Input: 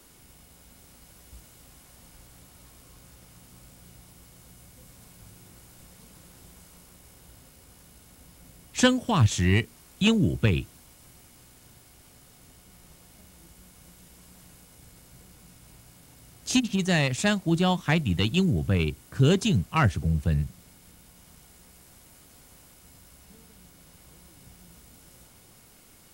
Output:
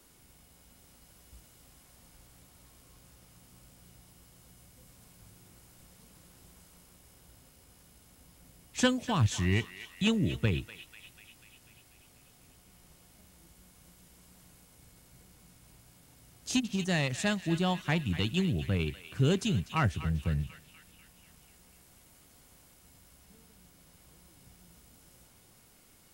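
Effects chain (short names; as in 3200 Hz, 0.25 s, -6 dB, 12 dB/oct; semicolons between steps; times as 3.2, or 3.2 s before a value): narrowing echo 0.245 s, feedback 67%, band-pass 2600 Hz, level -11 dB; gain -6 dB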